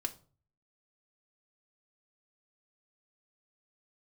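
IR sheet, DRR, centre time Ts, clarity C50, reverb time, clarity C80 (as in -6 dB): 3.0 dB, 5 ms, 17.0 dB, 0.40 s, 22.0 dB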